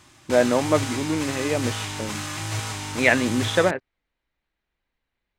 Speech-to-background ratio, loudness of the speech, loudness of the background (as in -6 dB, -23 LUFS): 7.0 dB, -23.0 LUFS, -30.0 LUFS